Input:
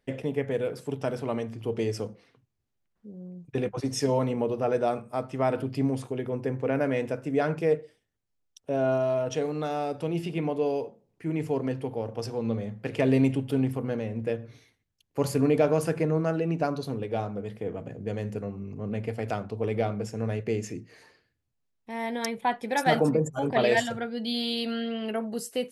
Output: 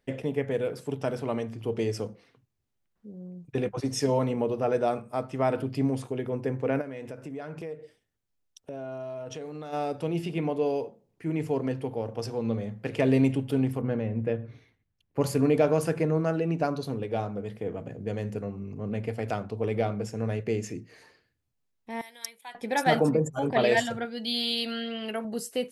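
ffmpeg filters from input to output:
-filter_complex "[0:a]asplit=3[a][b][c];[a]afade=t=out:st=6.8:d=0.02[d];[b]acompressor=threshold=-36dB:ratio=4:attack=3.2:release=140:knee=1:detection=peak,afade=t=in:st=6.8:d=0.02,afade=t=out:st=9.72:d=0.02[e];[c]afade=t=in:st=9.72:d=0.02[f];[d][e][f]amix=inputs=3:normalize=0,asettb=1/sr,asplit=3[g][h][i];[g]atrim=end=13.814[j];[h]atrim=start=13.81:end=15.21,asetpts=PTS-STARTPTS,afade=t=in:d=0.004:c=qsin,afade=t=out:st=1.396:d=0.004:c=qsin,bass=f=250:g=4,treble=f=4k:g=-14[k];[i]atrim=start=15.206[l];[j][k]acrossfade=d=0.004:c1=hsin:c2=qsin[m];[m][l]acrossfade=d=0.004:c1=qsin:c2=hsin,asettb=1/sr,asplit=3[n][o][p];[n]atrim=end=22.014[q];[o]atrim=start=22.01:end=22.55,asetpts=PTS-STARTPTS,afade=t=in:d=0.004:c=qsin,afade=t=out:st=0.536:d=0.004:c=qsin,aderivative[r];[p]atrim=start=22.546[s];[q][r]acrossfade=d=0.004:c1=hsin:c2=qsin[t];[t][s]acrossfade=d=0.004:c1=qsin:c2=hsin,asettb=1/sr,asplit=3[u][v][w];[u]atrim=end=24.054[x];[v]atrim=start=24.05:end=25.25,asetpts=PTS-STARTPTS,afade=t=in:d=0.004:c=qsin,afade=t=out:st=1.196:d=0.004:c=qsin,tiltshelf=f=1.2k:g=-4[y];[w]atrim=start=25.246[z];[x][y]acrossfade=d=0.004:c1=hsin:c2=qsin[aa];[aa][z]acrossfade=d=0.004:c1=qsin:c2=hsin"

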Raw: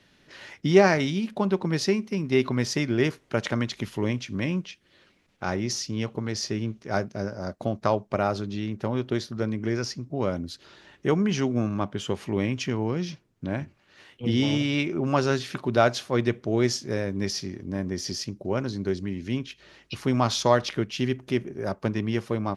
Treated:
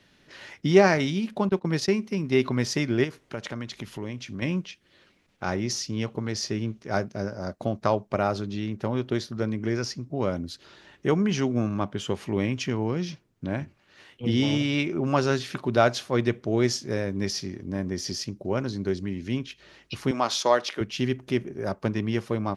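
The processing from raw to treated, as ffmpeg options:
-filter_complex "[0:a]asettb=1/sr,asplit=3[a][b][c];[a]atrim=end=1.494[d];[b]atrim=start=1.49:end=2,asetpts=PTS-STARTPTS,afade=t=in:d=0.004:c=qsin,afade=t=out:st=0.506:d=0.004:c=qsin,agate=range=-18dB:threshold=-31dB:ratio=16:release=100:detection=peak[e];[c]atrim=start=1.996[f];[d][e]acrossfade=d=0.004:c1=hsin:c2=qsin[g];[g][f]acrossfade=d=0.004:c1=qsin:c2=hsin,asettb=1/sr,asplit=3[h][i][j];[h]atrim=end=3.044[k];[i]atrim=start=3.04:end=4.42,asetpts=PTS-STARTPTS,afade=t=in:d=0.004:c=qsin,afade=t=out:st=1.376:d=0.004:c=qsin,acompressor=threshold=-35dB:ratio=2:attack=3.2:release=140:knee=1:detection=peak[l];[j]atrim=start=4.416[m];[k][l]acrossfade=d=0.004:c1=hsin:c2=qsin[n];[n][m]acrossfade=d=0.004:c1=qsin:c2=hsin,asettb=1/sr,asplit=3[o][p][q];[o]atrim=end=20.114[r];[p]atrim=start=20.11:end=20.81,asetpts=PTS-STARTPTS,afade=t=in:d=0.004:c=qsin,afade=t=out:st=0.696:d=0.004:c=qsin,highpass=350[s];[q]atrim=start=20.806[t];[r][s]acrossfade=d=0.004:c1=hsin:c2=qsin[u];[u][t]acrossfade=d=0.004:c1=qsin:c2=hsin"

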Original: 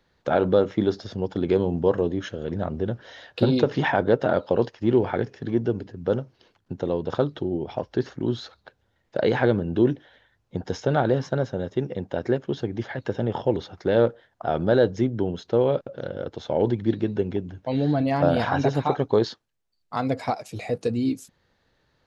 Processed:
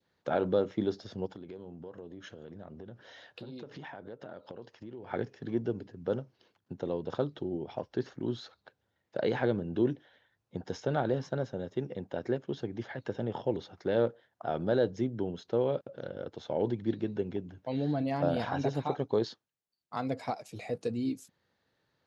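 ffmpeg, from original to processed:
-filter_complex "[0:a]asettb=1/sr,asplit=3[a][b][c];[a]atrim=end=1.264[d];[b]atrim=start=1.26:end=5.11,asetpts=PTS-STARTPTS,afade=t=in:d=0.004:c=qsin,afade=t=out:st=3.846:d=0.004:c=qsin,acompressor=threshold=-34dB:ratio=6:attack=3.2:release=140:knee=1:detection=peak[e];[c]atrim=start=5.106[f];[d][e]acrossfade=d=0.004:c1=hsin:c2=qsin[g];[g][f]acrossfade=d=0.004:c1=qsin:c2=hsin,highpass=100,adynamicequalizer=threshold=0.0158:dfrequency=1400:dqfactor=0.92:tfrequency=1400:tqfactor=0.92:attack=5:release=100:ratio=0.375:range=2:mode=cutabove:tftype=bell,volume=-8dB"

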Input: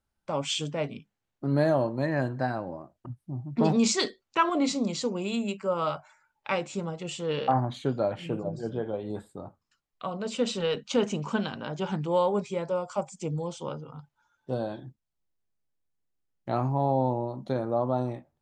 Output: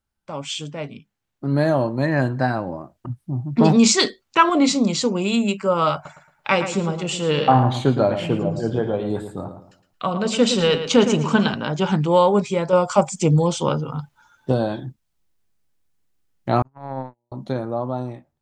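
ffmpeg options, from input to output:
-filter_complex "[0:a]asettb=1/sr,asplit=3[a][b][c];[a]atrim=end=5.944[d];[b]atrim=start=5.94:end=11.54,asetpts=PTS-STARTPTS,afade=t=in:d=0.004:c=qsin,afade=t=out:st=5.596:d=0.004:c=qsin,asplit=2[e][f];[f]adelay=112,lowpass=f=4.1k:p=1,volume=-9dB,asplit=2[g][h];[h]adelay=112,lowpass=f=4.1k:p=1,volume=0.31,asplit=2[i][j];[j]adelay=112,lowpass=f=4.1k:p=1,volume=0.31,asplit=2[k][l];[l]adelay=112,lowpass=f=4.1k:p=1,volume=0.31[m];[e][g][i][k][m]amix=inputs=5:normalize=0,atrim=end_sample=246960[n];[c]atrim=start=11.536[o];[d][n]acrossfade=d=0.004:c1=hsin:c2=qsin[p];[p][o]acrossfade=d=0.004:c1=qsin:c2=hsin,asettb=1/sr,asplit=3[q][r][s];[q]atrim=end=16.624[t];[r]atrim=start=16.62:end=17.32,asetpts=PTS-STARTPTS,afade=t=in:d=0.004:c=qsin,afade=t=out:st=0.696:d=0.004:c=qsin,agate=range=-54dB:threshold=-23dB:ratio=16:release=100:detection=peak[u];[s]atrim=start=17.316[v];[t][u]acrossfade=d=0.004:c1=hsin:c2=qsin[w];[w][v]acrossfade=d=0.004:c1=qsin:c2=hsin,asplit=3[x][y][z];[x]atrim=end=12.732[aa];[y]atrim=start=12.728:end=14.522,asetpts=PTS-STARTPTS,volume=4.5dB[ab];[z]atrim=start=14.518[ac];[aa][ab]acrossfade=d=0.004:c1=hsin:c2=hsin[ad];[ad][ac]acrossfade=d=0.004:c1=hsin:c2=hsin,equalizer=f=550:w=1:g=-3,dynaudnorm=f=310:g=11:m=11.5dB,volume=1dB"

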